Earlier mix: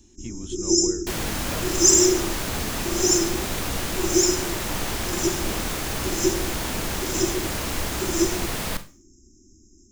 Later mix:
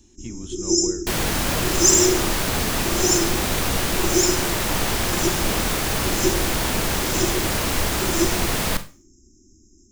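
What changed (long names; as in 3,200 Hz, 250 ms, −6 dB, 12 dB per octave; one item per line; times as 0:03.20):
speech: send on
second sound +5.5 dB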